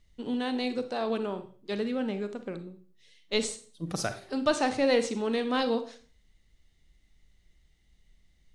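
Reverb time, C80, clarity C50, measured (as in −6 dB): 0.40 s, 17.5 dB, 11.5 dB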